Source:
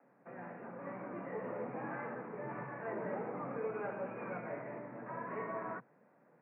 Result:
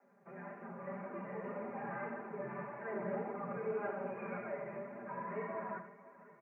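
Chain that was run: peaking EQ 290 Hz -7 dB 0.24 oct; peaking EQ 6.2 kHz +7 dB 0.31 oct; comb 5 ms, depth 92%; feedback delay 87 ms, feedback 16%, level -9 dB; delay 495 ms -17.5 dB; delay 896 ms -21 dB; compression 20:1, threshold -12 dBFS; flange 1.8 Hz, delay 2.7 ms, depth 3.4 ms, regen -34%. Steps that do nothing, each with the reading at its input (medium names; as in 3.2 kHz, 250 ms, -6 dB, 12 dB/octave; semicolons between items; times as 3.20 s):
peaking EQ 6.2 kHz: input has nothing above 2.6 kHz; compression, threshold -12 dBFS: peak at its input -22.5 dBFS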